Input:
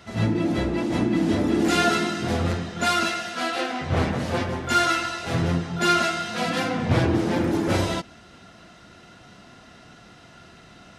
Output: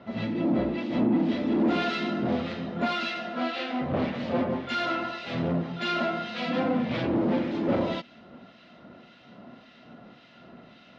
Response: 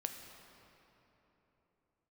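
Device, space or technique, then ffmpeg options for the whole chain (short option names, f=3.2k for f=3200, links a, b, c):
guitar amplifier with harmonic tremolo: -filter_complex "[0:a]acrossover=split=1600[a][b];[a]aeval=exprs='val(0)*(1-0.7/2+0.7/2*cos(2*PI*1.8*n/s))':c=same[c];[b]aeval=exprs='val(0)*(1-0.7/2-0.7/2*cos(2*PI*1.8*n/s))':c=same[d];[c][d]amix=inputs=2:normalize=0,asoftclip=type=tanh:threshold=-22dB,highpass=86,equalizer=f=93:t=q:w=4:g=-10,equalizer=f=240:t=q:w=4:g=9,equalizer=f=570:t=q:w=4:g=7,equalizer=f=1.6k:t=q:w=4:g=-4,lowpass=f=4k:w=0.5412,lowpass=f=4k:w=1.3066"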